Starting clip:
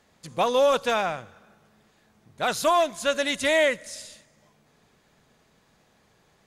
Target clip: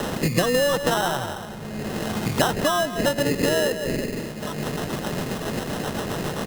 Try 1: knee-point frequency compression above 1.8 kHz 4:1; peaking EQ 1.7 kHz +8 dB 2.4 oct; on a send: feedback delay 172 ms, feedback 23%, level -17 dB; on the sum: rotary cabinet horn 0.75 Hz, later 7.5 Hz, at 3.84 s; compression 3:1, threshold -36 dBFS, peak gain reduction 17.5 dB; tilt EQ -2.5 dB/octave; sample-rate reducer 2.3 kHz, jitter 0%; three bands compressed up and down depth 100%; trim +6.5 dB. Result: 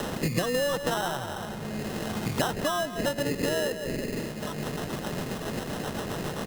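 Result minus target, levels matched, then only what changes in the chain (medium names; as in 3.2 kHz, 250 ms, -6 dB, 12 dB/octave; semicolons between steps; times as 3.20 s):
compression: peak gain reduction +6.5 dB
change: compression 3:1, threshold -26.5 dBFS, peak gain reduction 11.5 dB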